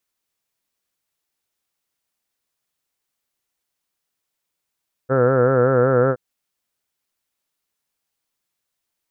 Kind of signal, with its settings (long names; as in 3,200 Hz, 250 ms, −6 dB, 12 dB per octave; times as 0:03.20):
vowel by formant synthesis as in heard, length 1.07 s, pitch 128 Hz, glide 0 semitones